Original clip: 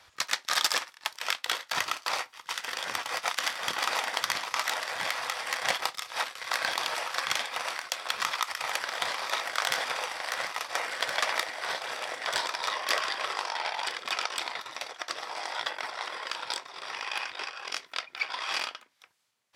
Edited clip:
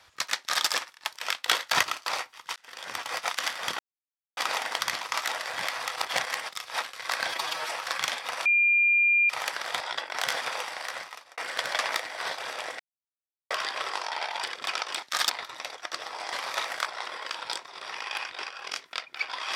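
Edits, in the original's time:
0.39–0.66 s: copy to 14.46 s
1.48–1.83 s: gain +6 dB
2.56–3.07 s: fade in
3.79 s: insert silence 0.58 s
5.38–5.91 s: reverse
6.70–6.99 s: stretch 1.5×
7.73–8.57 s: bleep 2.4 kHz -18.5 dBFS
9.08–9.61 s: swap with 15.49–15.86 s
10.14–10.81 s: fade out
12.23–12.94 s: mute

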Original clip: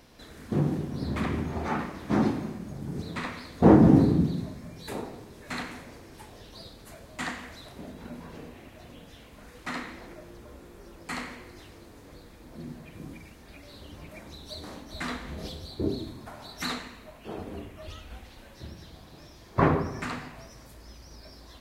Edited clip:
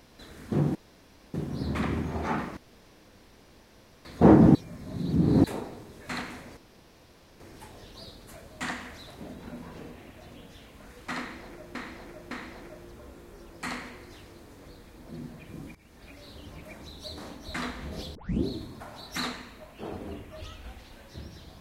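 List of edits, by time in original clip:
0.75 s: insert room tone 0.59 s
1.98–3.46 s: room tone
3.96–4.85 s: reverse
5.98 s: insert room tone 0.83 s
9.77–10.33 s: loop, 3 plays
13.21–13.62 s: fade in equal-power, from -17 dB
15.61 s: tape start 0.31 s

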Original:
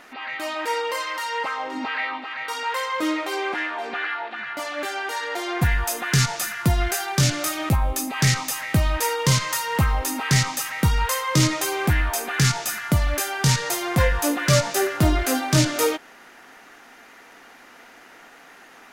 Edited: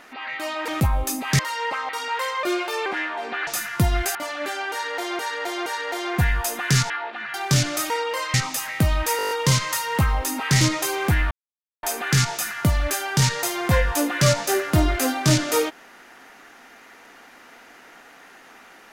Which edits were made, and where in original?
0.68–1.12 s: swap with 7.57–8.28 s
1.62–2.44 s: delete
2.98–3.47 s: speed 114%
4.08–4.52 s: swap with 6.33–7.01 s
5.09–5.56 s: loop, 3 plays
9.11 s: stutter 0.02 s, 8 plays
10.41–11.40 s: delete
12.10 s: insert silence 0.52 s

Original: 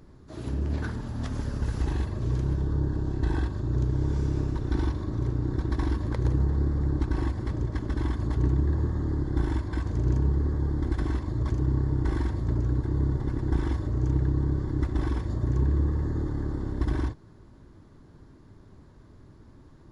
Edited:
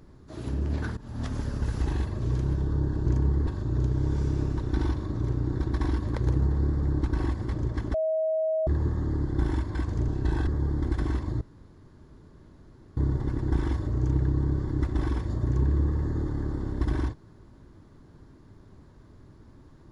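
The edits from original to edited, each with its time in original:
0.97–1.22 s: fade in, from -17.5 dB
3.06–3.45 s: swap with 10.06–10.47 s
7.92–8.65 s: bleep 636 Hz -23 dBFS
11.41–12.97 s: room tone

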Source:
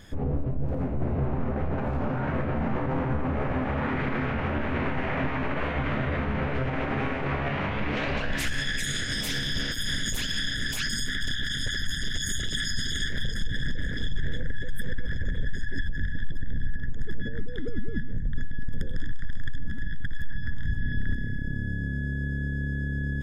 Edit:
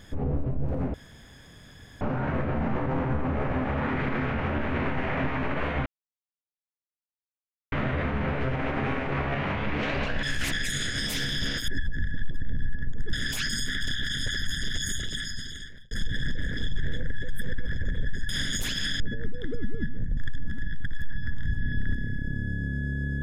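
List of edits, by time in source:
0.94–2.01 s: room tone
5.86 s: insert silence 1.86 s
8.37–8.66 s: reverse
9.82–10.53 s: swap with 15.69–17.14 s
12.20–13.31 s: fade out
18.31–19.37 s: delete

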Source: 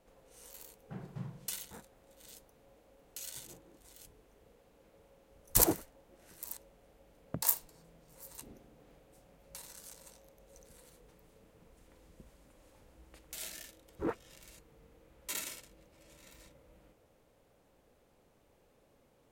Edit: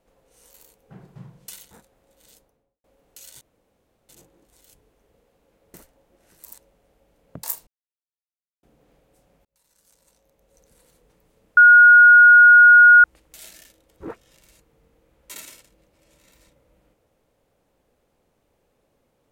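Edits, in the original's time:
2.31–2.84 s: studio fade out
3.41 s: insert room tone 0.68 s
5.06–5.73 s: delete
7.66–8.62 s: mute
9.44–10.79 s: fade in
11.56–13.03 s: bleep 1.44 kHz -6 dBFS

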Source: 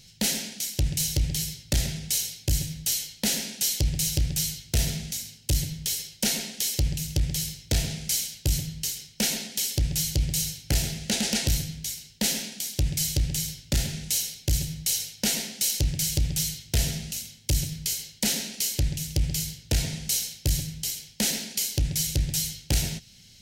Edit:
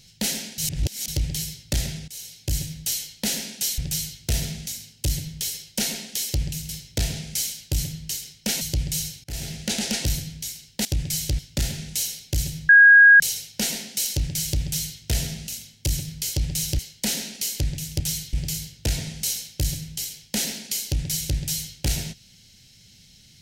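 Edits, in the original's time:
0.58–1.08 s: reverse
2.08–2.57 s: fade in, from -18.5 dB
3.78–4.23 s: move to 17.98 s
7.14–7.43 s: delete
9.35–10.03 s: delete
10.66–10.95 s: fade in, from -23.5 dB
12.27–12.72 s: delete
13.26–13.54 s: delete
14.84 s: add tone 1.64 kHz -7.5 dBFS 0.51 s
16.31–16.64 s: copy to 19.19 s

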